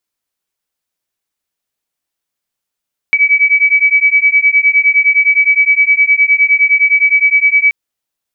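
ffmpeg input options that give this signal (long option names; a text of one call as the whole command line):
ffmpeg -f lavfi -i "aevalsrc='0.316*(sin(2*PI*2280*t)+sin(2*PI*2289.7*t))':duration=4.58:sample_rate=44100" out.wav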